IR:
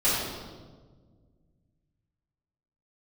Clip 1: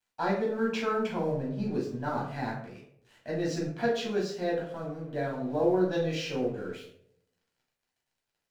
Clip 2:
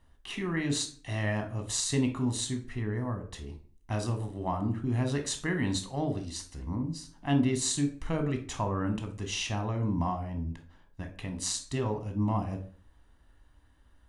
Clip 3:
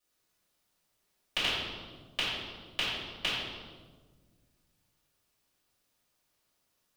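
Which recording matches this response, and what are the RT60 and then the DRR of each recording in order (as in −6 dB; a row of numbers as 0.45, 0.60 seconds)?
3; 0.70, 0.45, 1.5 seconds; −4.5, 5.5, −13.0 decibels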